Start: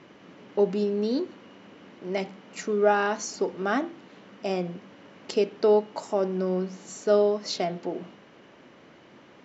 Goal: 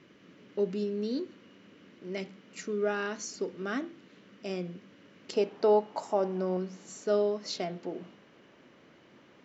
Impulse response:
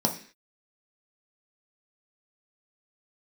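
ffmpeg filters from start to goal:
-af "asetnsamples=n=441:p=0,asendcmd='5.33 equalizer g 6;6.57 equalizer g -3.5',equalizer=f=810:w=1.7:g=-11,volume=-5dB"

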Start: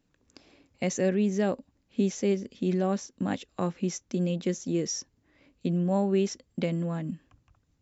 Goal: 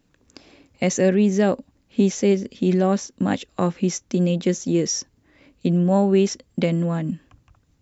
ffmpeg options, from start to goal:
-af "acontrast=68,volume=1.5dB"

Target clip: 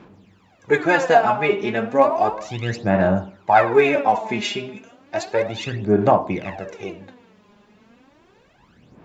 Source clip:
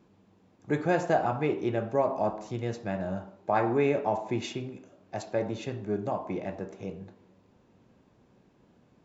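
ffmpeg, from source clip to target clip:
-af "aphaser=in_gain=1:out_gain=1:delay=4.9:decay=0.7:speed=0.33:type=sinusoidal,equalizer=f=2.2k:t=o:w=2.9:g=9,volume=3.5dB"

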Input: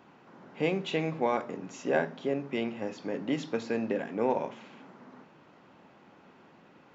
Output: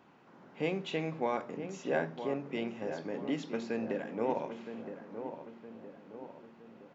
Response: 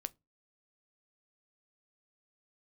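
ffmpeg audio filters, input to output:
-filter_complex "[0:a]asplit=2[a][b];[b]adelay=966,lowpass=f=1.4k:p=1,volume=-8.5dB,asplit=2[c][d];[d]adelay=966,lowpass=f=1.4k:p=1,volume=0.53,asplit=2[e][f];[f]adelay=966,lowpass=f=1.4k:p=1,volume=0.53,asplit=2[g][h];[h]adelay=966,lowpass=f=1.4k:p=1,volume=0.53,asplit=2[i][j];[j]adelay=966,lowpass=f=1.4k:p=1,volume=0.53,asplit=2[k][l];[l]adelay=966,lowpass=f=1.4k:p=1,volume=0.53[m];[a][c][e][g][i][k][m]amix=inputs=7:normalize=0,volume=-4.5dB"

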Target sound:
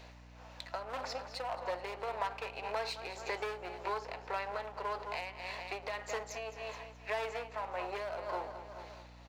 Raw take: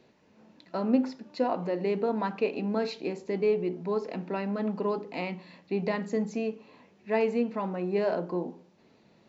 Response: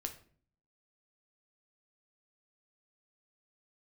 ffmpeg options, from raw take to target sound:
-filter_complex "[0:a]aeval=exprs='if(lt(val(0),0),0.447*val(0),val(0))':c=same,asplit=2[a][b];[b]aecho=0:1:213|426|639|852:0.211|0.0909|0.0391|0.0168[c];[a][c]amix=inputs=2:normalize=0,asoftclip=type=hard:threshold=-22.5dB,highpass=f=620:w=0.5412,highpass=f=620:w=1.3066,acompressor=threshold=-49dB:ratio=4,tremolo=f=1.8:d=0.5,aeval=exprs='val(0)+0.000398*(sin(2*PI*60*n/s)+sin(2*PI*2*60*n/s)/2+sin(2*PI*3*60*n/s)/3+sin(2*PI*4*60*n/s)/4+sin(2*PI*5*60*n/s)/5)':c=same,volume=14dB"

